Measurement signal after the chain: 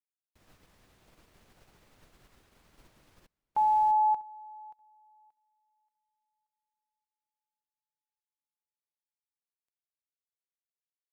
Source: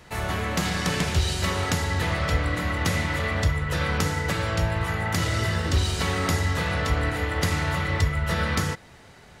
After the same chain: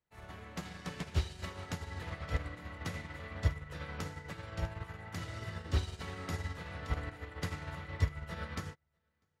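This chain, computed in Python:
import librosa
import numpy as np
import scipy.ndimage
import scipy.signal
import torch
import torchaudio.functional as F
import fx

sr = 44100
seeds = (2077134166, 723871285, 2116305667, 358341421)

y = fx.high_shelf(x, sr, hz=5400.0, db=-6.5)
y = y + 10.0 ** (-16.0 / 20.0) * np.pad(y, (int(647 * sr / 1000.0), 0))[:len(y)]
y = fx.upward_expand(y, sr, threshold_db=-40.0, expansion=2.5)
y = y * 10.0 ** (-6.0 / 20.0)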